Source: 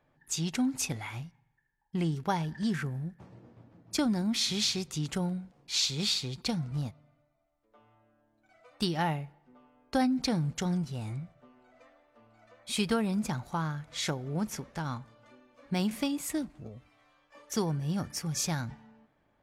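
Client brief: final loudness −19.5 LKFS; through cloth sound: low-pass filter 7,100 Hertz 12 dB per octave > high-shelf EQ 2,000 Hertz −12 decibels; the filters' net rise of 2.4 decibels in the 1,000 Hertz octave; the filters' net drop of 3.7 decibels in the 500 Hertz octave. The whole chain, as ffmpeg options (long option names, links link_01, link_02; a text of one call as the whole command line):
ffmpeg -i in.wav -af "lowpass=7100,equalizer=frequency=500:width_type=o:gain=-6,equalizer=frequency=1000:width_type=o:gain=8,highshelf=frequency=2000:gain=-12,volume=14.5dB" out.wav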